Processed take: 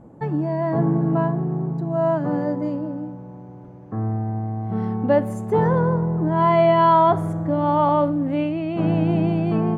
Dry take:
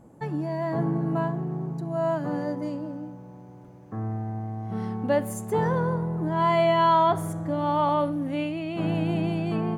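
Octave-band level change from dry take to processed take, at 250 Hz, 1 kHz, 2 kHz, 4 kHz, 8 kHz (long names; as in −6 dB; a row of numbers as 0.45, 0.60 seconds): +6.5 dB, +4.5 dB, +1.5 dB, −2.0 dB, can't be measured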